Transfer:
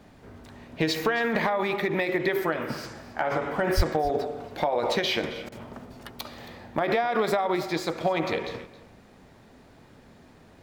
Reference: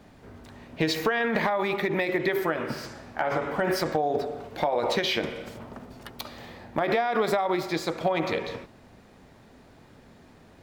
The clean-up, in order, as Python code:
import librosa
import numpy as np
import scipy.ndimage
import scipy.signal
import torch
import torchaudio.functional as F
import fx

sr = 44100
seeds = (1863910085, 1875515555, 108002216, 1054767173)

y = fx.fix_deplosive(x, sr, at_s=(3.76,))
y = fx.fix_interpolate(y, sr, at_s=(5.49,), length_ms=29.0)
y = fx.fix_echo_inverse(y, sr, delay_ms=271, level_db=-17.5)